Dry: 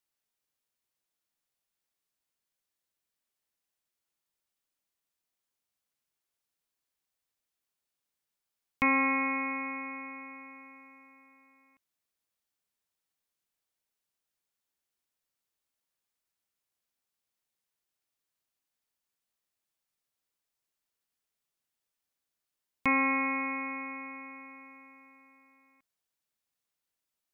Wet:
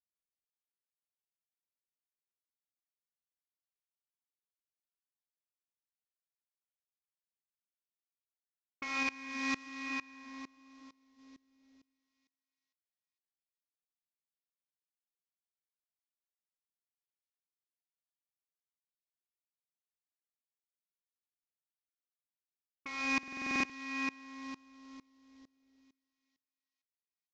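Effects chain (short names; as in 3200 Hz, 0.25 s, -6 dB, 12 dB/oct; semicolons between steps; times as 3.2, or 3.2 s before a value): CVSD 32 kbps; high shelf 2200 Hz +8.5 dB; low-pass opened by the level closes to 450 Hz, open at -27 dBFS; bell 130 Hz -8.5 dB 0.99 oct; thinning echo 0.312 s, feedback 55%, high-pass 860 Hz, level -11 dB; reverb RT60 1.3 s, pre-delay 15 ms, DRR -1.5 dB; 9.03–11.19 flange 1.1 Hz, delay 1.1 ms, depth 6.9 ms, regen -79%; compressor 6:1, threshold -28 dBFS, peak gain reduction 9.5 dB; stuck buffer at 23.14, samples 2048, times 11; dB-ramp tremolo swelling 2.2 Hz, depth 24 dB; gain +2 dB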